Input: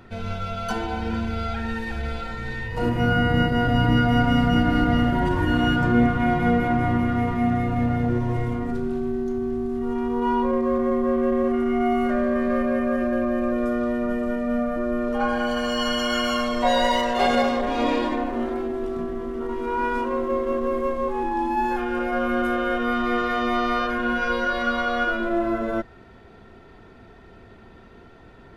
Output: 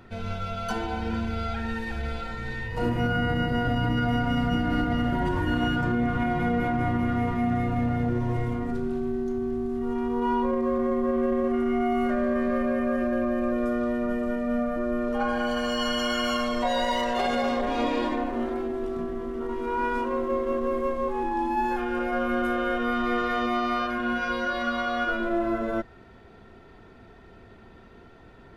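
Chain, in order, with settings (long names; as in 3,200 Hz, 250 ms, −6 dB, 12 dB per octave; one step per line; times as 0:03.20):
0:23.46–0:25.09: notch comb filter 460 Hz
brickwall limiter −14 dBFS, peak gain reduction 7 dB
level −2.5 dB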